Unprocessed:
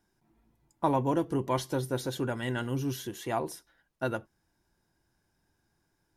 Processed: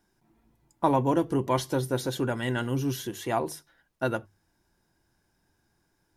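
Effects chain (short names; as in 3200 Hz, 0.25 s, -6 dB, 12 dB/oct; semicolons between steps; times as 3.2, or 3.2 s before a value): notches 50/100/150 Hz; gain +3.5 dB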